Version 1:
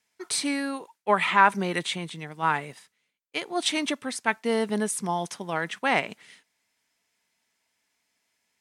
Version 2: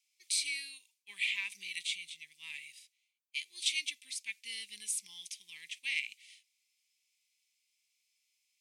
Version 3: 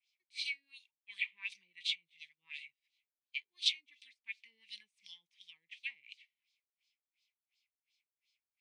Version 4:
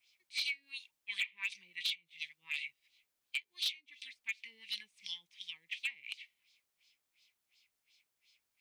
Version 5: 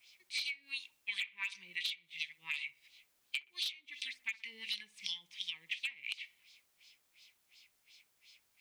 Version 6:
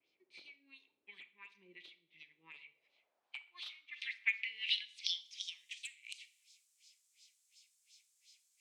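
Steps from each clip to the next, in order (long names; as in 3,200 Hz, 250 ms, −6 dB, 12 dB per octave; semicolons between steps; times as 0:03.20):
harmonic and percussive parts rebalanced percussive −5 dB; elliptic high-pass filter 2,300 Hz, stop band 40 dB
auto-filter low-pass sine 2.8 Hz 480–4,400 Hz; guitar amp tone stack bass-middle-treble 5-5-5; level +3 dB
downward compressor 6 to 1, threshold −44 dBFS, peak gain reduction 18 dB; hard clipping −38.5 dBFS, distortion −17 dB; level +11 dB
downward compressor 6 to 1, threshold −45 dBFS, peak gain reduction 13.5 dB; delay with a low-pass on its return 62 ms, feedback 42%, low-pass 1,300 Hz, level −13 dB; level +9 dB
band-pass filter sweep 360 Hz → 7,500 Hz, 0:02.46–0:05.66; pitch vibrato 0.81 Hz 27 cents; four-comb reverb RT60 0.47 s, combs from 27 ms, DRR 14.5 dB; level +7 dB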